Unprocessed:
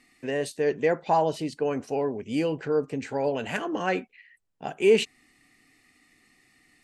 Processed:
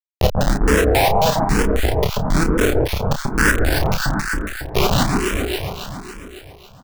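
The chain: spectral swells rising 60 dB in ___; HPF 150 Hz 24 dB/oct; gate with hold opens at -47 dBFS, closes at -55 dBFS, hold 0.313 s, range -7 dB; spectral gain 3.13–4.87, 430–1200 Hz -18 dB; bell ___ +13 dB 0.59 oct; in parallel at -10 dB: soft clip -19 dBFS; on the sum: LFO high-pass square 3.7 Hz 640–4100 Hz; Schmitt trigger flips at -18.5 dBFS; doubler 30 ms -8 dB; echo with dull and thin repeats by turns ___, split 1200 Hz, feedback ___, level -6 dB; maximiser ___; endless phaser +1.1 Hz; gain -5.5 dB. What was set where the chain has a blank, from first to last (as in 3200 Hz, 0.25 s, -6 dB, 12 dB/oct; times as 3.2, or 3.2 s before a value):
0.98 s, 1500 Hz, 0.138 s, 76%, +25 dB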